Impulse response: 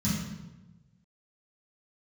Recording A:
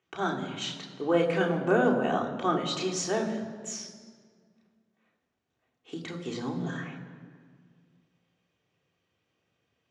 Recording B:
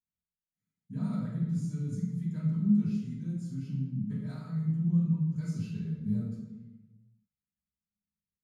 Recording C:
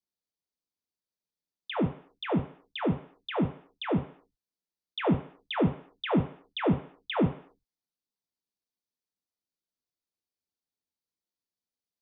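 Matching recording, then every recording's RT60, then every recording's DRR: B; 1.8, 1.1, 0.55 s; -2.0, -11.5, 0.5 dB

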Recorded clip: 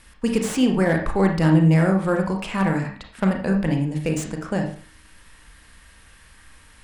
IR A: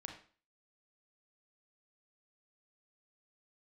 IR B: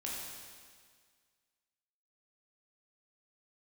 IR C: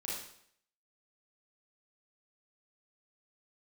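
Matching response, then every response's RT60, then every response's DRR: A; 0.40, 1.8, 0.65 s; 2.0, -5.0, -6.5 dB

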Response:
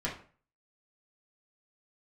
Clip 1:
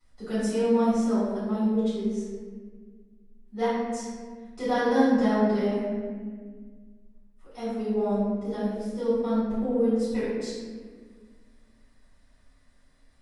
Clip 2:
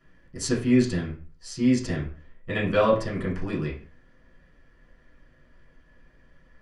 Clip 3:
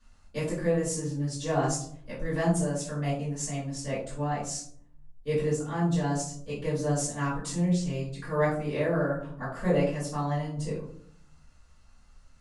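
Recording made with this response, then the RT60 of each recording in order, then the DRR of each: 2; 1.6, 0.40, 0.60 s; -14.5, -6.5, -12.0 dB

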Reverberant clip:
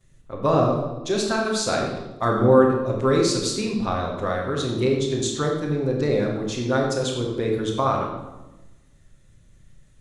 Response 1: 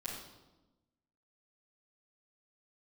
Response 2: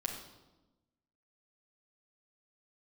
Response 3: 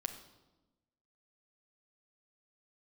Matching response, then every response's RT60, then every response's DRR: 1; 1.1, 1.1, 1.1 s; -11.0, -1.5, 4.5 dB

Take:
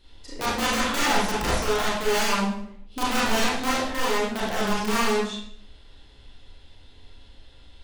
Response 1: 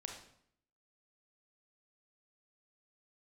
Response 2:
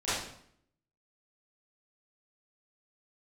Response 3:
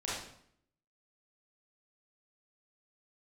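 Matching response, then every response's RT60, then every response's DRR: 3; 0.65, 0.65, 0.65 s; 2.0, -15.5, -8.0 dB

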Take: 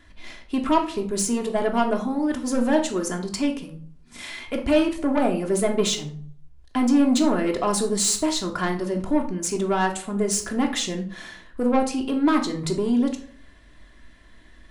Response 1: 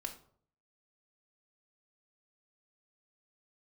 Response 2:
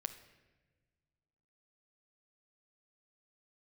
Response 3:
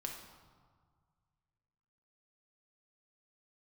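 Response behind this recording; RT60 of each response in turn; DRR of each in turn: 1; 0.55, 1.3, 1.8 s; 2.0, 8.5, 1.0 dB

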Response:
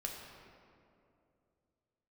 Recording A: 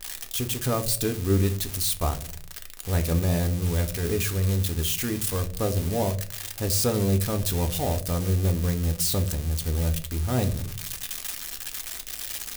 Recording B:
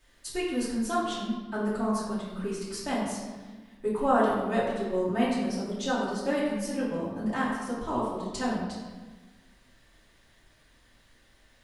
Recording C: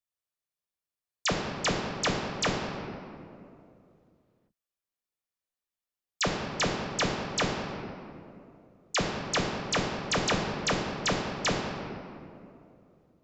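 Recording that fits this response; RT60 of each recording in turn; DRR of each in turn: C; 0.50, 1.3, 2.6 s; 6.0, -10.5, -0.5 dB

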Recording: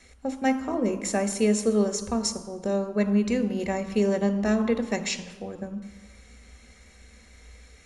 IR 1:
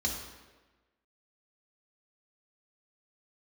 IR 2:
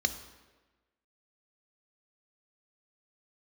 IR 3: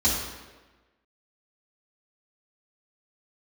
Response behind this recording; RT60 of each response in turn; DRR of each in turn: 2; 1.3, 1.3, 1.3 s; -1.5, 8.5, -8.5 dB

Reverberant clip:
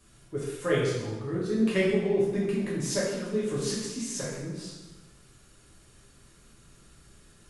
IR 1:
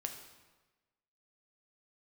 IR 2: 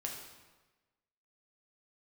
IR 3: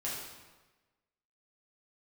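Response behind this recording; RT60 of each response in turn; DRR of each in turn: 3; 1.2, 1.2, 1.2 s; 4.0, -0.5, -7.0 dB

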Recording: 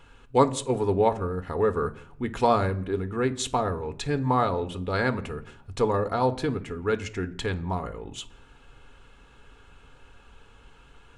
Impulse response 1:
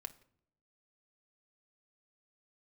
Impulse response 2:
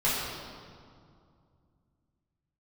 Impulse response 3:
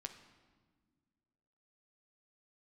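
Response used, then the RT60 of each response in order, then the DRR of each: 1; not exponential, 2.3 s, not exponential; 8.0, -11.0, 6.0 dB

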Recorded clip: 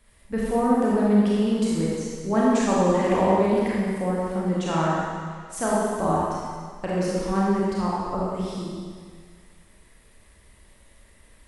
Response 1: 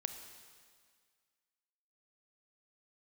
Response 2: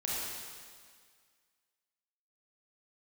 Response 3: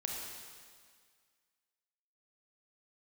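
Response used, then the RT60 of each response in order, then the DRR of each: 2; 1.9, 1.9, 1.9 s; 7.0, -6.5, -1.0 dB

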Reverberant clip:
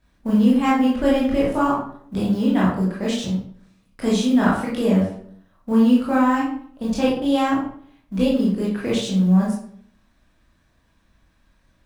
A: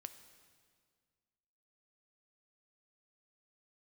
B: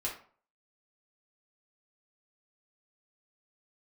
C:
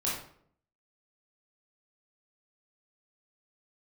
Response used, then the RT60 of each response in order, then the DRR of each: C; 1.9, 0.45, 0.60 s; 9.5, -4.5, -6.5 dB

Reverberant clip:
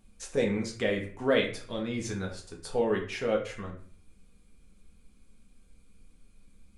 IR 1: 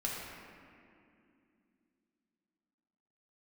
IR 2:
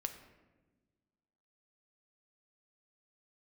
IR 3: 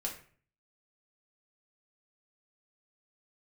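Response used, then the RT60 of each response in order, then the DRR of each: 3; 2.5, 1.3, 0.45 s; -4.5, 6.5, -1.5 dB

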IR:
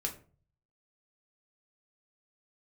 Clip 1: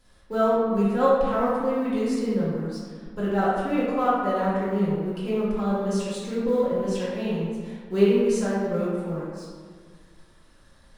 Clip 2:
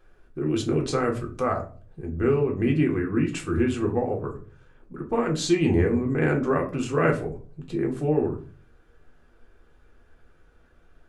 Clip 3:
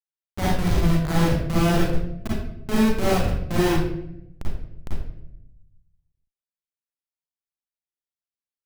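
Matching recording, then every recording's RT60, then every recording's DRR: 2; 1.7, 0.40, 0.80 s; -10.0, 0.0, -6.5 dB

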